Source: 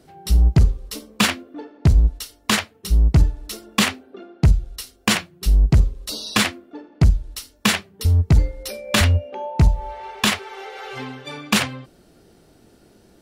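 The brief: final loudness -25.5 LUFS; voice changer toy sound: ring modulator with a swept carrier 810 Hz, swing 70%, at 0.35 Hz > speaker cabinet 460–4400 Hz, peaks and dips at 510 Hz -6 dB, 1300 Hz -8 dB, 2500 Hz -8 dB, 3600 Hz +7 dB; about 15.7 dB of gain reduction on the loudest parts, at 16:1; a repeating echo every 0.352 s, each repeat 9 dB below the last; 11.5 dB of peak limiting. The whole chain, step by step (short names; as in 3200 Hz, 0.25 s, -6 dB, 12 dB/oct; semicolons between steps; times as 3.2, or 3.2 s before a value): compressor 16:1, threshold -25 dBFS; limiter -22 dBFS; feedback echo 0.352 s, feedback 35%, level -9 dB; ring modulator with a swept carrier 810 Hz, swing 70%, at 0.35 Hz; speaker cabinet 460–4400 Hz, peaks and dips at 510 Hz -6 dB, 1300 Hz -8 dB, 2500 Hz -8 dB, 3600 Hz +7 dB; gain +13 dB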